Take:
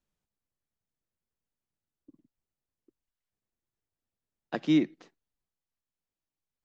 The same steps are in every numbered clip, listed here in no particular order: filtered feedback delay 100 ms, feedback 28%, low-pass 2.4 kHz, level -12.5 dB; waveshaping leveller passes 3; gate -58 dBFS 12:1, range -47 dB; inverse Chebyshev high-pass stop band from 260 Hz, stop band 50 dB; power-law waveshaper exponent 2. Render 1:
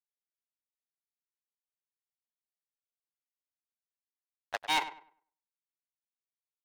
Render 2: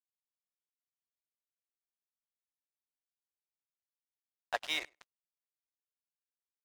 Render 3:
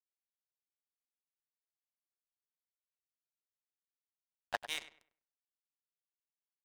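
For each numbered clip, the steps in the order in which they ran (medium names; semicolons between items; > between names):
power-law waveshaper > inverse Chebyshev high-pass > waveshaping leveller > gate > filtered feedback delay; inverse Chebyshev high-pass > waveshaping leveller > filtered feedback delay > power-law waveshaper > gate; gate > inverse Chebyshev high-pass > power-law waveshaper > waveshaping leveller > filtered feedback delay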